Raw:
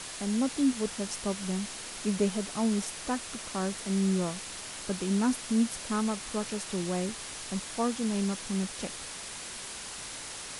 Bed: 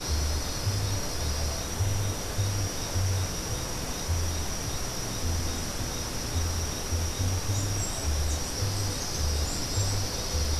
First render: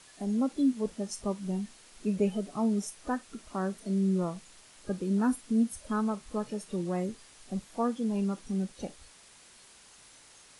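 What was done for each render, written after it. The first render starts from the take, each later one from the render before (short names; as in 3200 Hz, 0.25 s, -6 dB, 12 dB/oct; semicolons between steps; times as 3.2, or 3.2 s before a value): noise print and reduce 15 dB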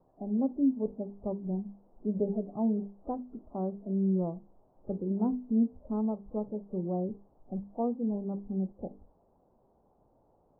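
steep low-pass 830 Hz 36 dB/oct; notches 50/100/150/200/250/300/350/400/450 Hz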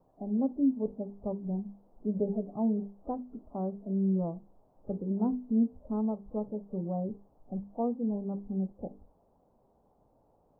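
notch 360 Hz, Q 12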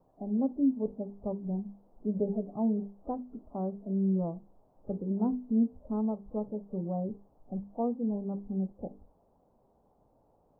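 nothing audible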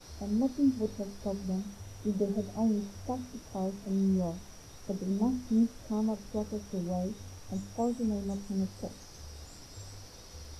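add bed -19 dB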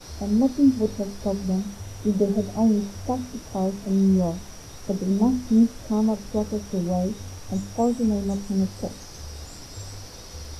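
gain +9 dB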